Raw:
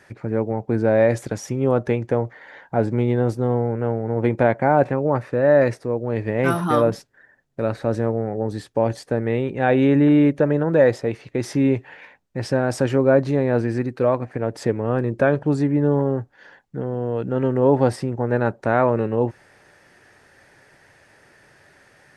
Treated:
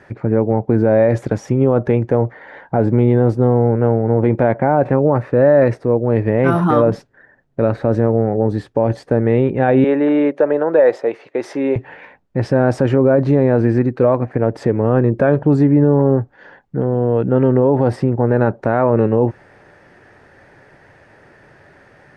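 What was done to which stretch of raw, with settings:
0:09.84–0:11.76: Chebyshev high-pass filter 520 Hz
whole clip: low-pass filter 1,200 Hz 6 dB per octave; boost into a limiter +12 dB; level −3 dB

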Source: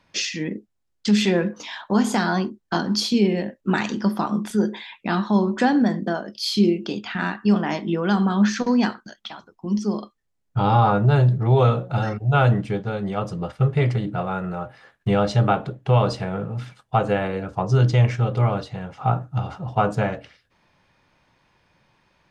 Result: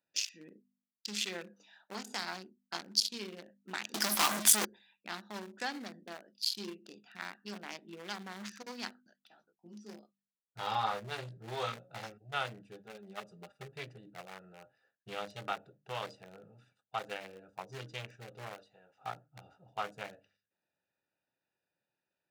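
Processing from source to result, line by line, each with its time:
0:03.94–0:04.65: leveller curve on the samples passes 5
0:09.29–0:12.10: double-tracking delay 18 ms −3 dB
0:12.84–0:13.68: comb filter 5 ms
0:18.54–0:18.95: bass and treble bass −12 dB, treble 0 dB
whole clip: adaptive Wiener filter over 41 samples; first difference; hum removal 49.72 Hz, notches 5; level +2.5 dB

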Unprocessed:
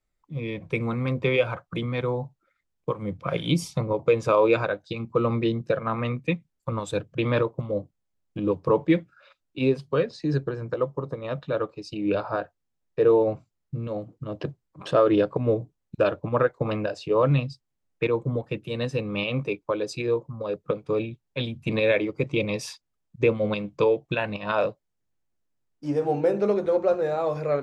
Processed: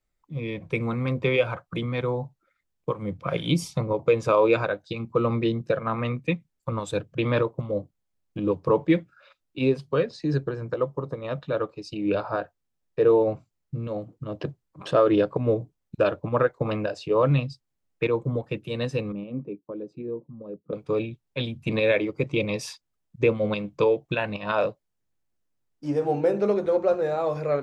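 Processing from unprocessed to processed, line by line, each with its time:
0:19.12–0:20.73: resonant band-pass 240 Hz, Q 1.9

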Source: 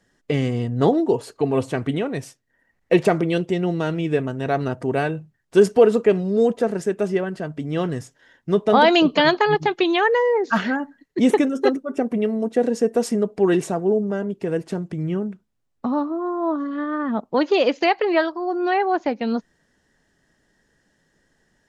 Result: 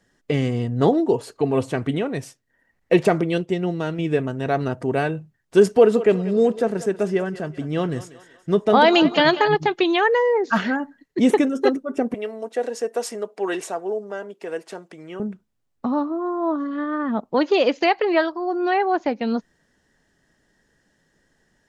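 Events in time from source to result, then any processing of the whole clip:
0:03.23–0:03.99: expander for the loud parts, over −30 dBFS
0:05.74–0:09.48: feedback echo with a high-pass in the loop 190 ms, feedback 49%, level −14 dB
0:12.14–0:15.20: high-pass filter 560 Hz

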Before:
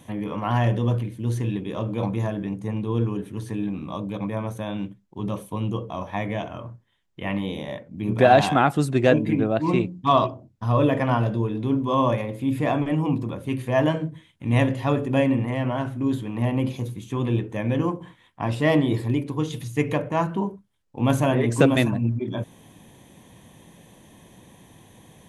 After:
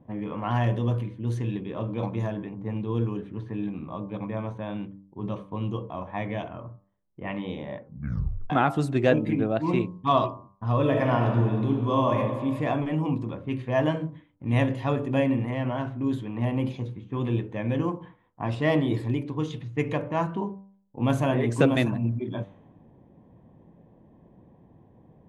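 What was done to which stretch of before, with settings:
0:07.83: tape stop 0.67 s
0:10.79–0:12.17: thrown reverb, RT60 1.6 s, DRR 2 dB
whole clip: hum removal 98.09 Hz, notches 14; low-pass that shuts in the quiet parts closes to 660 Hz, open at −19.5 dBFS; high-shelf EQ 8,000 Hz −10 dB; level −3 dB

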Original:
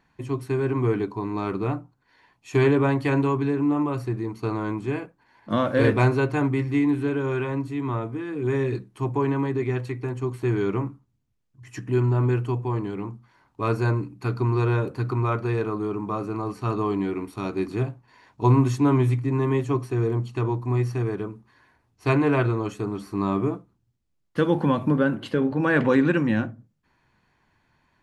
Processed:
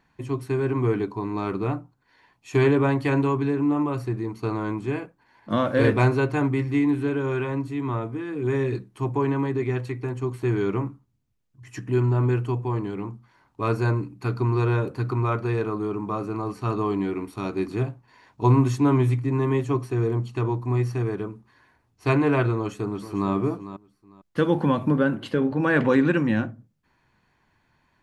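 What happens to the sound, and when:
0:22.57–0:23.31: delay throw 450 ms, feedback 20%, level −12.5 dB

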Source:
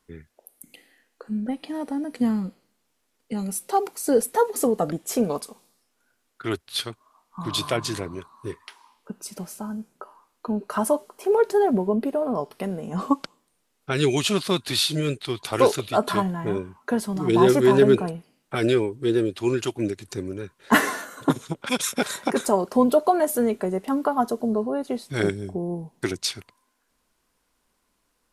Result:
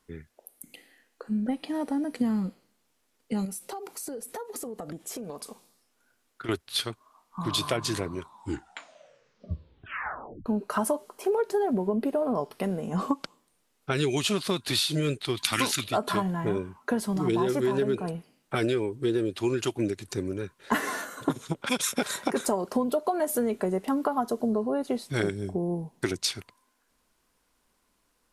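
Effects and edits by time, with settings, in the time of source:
0:03.45–0:06.49: downward compressor 16 to 1, threshold −33 dBFS
0:08.13: tape stop 2.33 s
0:15.37–0:15.84: drawn EQ curve 120 Hz 0 dB, 270 Hz +6 dB, 430 Hz −14 dB, 1,900 Hz +11 dB
whole clip: downward compressor 12 to 1, threshold −22 dBFS

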